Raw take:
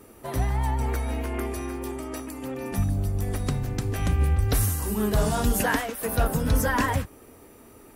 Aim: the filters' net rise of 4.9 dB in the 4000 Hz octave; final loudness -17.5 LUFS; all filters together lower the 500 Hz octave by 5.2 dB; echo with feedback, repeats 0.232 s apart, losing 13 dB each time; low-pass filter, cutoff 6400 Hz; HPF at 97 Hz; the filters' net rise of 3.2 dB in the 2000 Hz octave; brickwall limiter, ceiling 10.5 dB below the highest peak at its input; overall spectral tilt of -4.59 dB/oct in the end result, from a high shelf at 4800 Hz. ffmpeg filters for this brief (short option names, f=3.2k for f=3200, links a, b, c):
-af "highpass=97,lowpass=6.4k,equalizer=f=500:t=o:g=-7,equalizer=f=2k:t=o:g=3,equalizer=f=4k:t=o:g=3,highshelf=f=4.8k:g=6.5,alimiter=limit=-19.5dB:level=0:latency=1,aecho=1:1:232|464|696:0.224|0.0493|0.0108,volume=13dB"